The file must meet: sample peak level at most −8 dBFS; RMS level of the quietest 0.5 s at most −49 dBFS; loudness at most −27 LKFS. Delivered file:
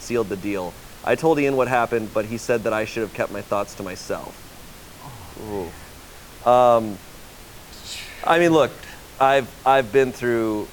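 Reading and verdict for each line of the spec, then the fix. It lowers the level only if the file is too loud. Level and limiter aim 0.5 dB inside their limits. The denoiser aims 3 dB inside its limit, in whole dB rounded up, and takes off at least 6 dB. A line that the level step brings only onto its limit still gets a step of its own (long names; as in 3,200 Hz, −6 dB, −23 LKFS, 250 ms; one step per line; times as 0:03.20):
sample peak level −4.0 dBFS: out of spec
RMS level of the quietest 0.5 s −42 dBFS: out of spec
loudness −21.0 LKFS: out of spec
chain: broadband denoise 6 dB, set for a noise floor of −42 dBFS
level −6.5 dB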